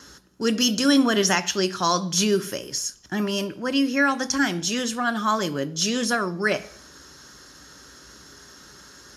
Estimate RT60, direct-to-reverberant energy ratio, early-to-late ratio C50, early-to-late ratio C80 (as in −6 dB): 0.55 s, 10.0 dB, 18.5 dB, 21.5 dB